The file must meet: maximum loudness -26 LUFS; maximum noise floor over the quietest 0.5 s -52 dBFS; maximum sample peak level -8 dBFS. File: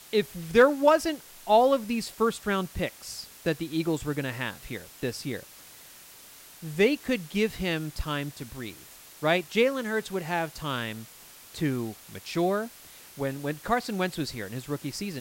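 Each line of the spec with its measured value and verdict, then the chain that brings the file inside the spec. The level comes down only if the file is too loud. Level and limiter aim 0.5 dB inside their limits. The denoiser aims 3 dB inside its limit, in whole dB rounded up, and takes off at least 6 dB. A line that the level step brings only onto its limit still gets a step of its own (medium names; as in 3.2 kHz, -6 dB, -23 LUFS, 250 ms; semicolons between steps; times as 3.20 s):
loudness -28.0 LUFS: pass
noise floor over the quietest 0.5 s -50 dBFS: fail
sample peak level -8.5 dBFS: pass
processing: noise reduction 6 dB, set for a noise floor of -50 dBFS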